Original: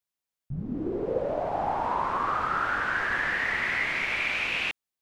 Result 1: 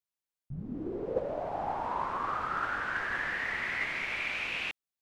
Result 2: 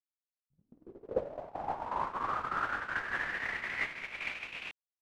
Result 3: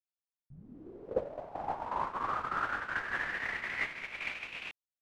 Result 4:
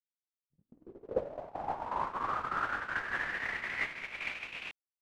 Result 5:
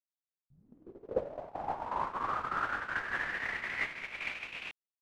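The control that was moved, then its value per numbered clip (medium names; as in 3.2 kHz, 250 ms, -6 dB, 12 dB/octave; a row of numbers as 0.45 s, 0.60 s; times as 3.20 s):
gate, range: -6 dB, -46 dB, -19 dB, -58 dB, -31 dB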